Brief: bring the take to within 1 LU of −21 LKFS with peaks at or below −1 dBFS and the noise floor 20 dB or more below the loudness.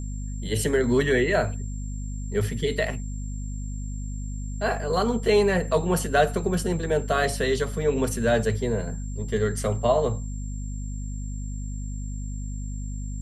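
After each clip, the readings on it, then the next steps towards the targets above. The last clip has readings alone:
mains hum 50 Hz; hum harmonics up to 250 Hz; level of the hum −29 dBFS; interfering tone 7,400 Hz; level of the tone −46 dBFS; integrated loudness −26.5 LKFS; sample peak −6.5 dBFS; target loudness −21.0 LKFS
→ mains-hum notches 50/100/150/200/250 Hz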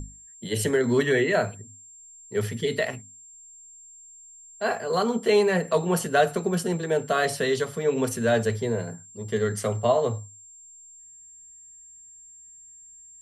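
mains hum none found; interfering tone 7,400 Hz; level of the tone −46 dBFS
→ notch filter 7,400 Hz, Q 30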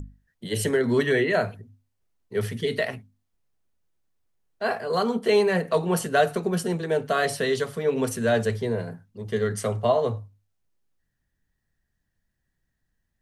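interfering tone none found; integrated loudness −25.0 LKFS; sample peak −7.0 dBFS; target loudness −21.0 LKFS
→ level +4 dB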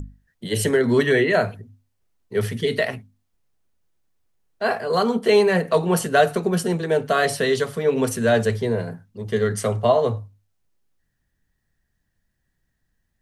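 integrated loudness −21.0 LKFS; sample peak −3.5 dBFS; background noise floor −74 dBFS

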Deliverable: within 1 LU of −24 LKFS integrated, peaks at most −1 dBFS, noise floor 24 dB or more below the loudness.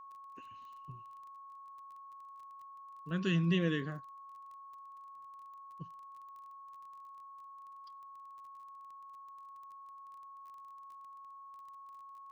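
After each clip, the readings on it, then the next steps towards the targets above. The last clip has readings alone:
crackle rate 22 per second; interfering tone 1,100 Hz; level of the tone −49 dBFS; integrated loudness −43.0 LKFS; sample peak −19.5 dBFS; target loudness −24.0 LKFS
→ click removal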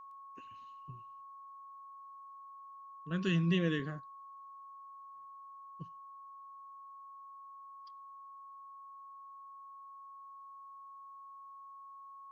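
crackle rate 0.081 per second; interfering tone 1,100 Hz; level of the tone −49 dBFS
→ notch filter 1,100 Hz, Q 30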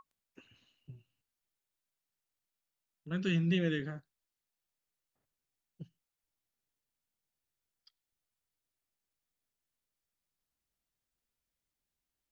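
interfering tone none found; integrated loudness −33.5 LKFS; sample peak −20.0 dBFS; target loudness −24.0 LKFS
→ level +9.5 dB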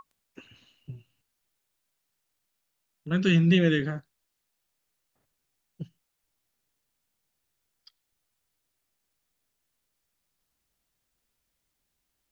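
integrated loudness −24.0 LKFS; sample peak −10.5 dBFS; background noise floor −80 dBFS

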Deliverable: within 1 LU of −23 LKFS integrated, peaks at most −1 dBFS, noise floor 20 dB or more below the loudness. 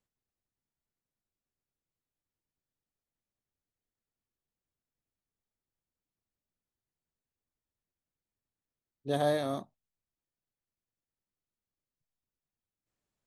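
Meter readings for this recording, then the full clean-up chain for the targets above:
integrated loudness −32.0 LKFS; sample peak −17.5 dBFS; target loudness −23.0 LKFS
→ level +9 dB

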